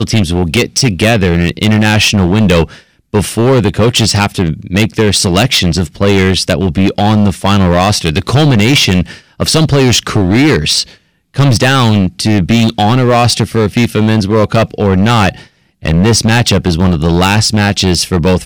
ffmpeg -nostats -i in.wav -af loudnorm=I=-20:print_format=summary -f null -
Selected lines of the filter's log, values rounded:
Input Integrated:    -10.2 LUFS
Input True Peak:      -2.5 dBTP
Input LRA:             1.2 LU
Input Threshold:     -20.4 LUFS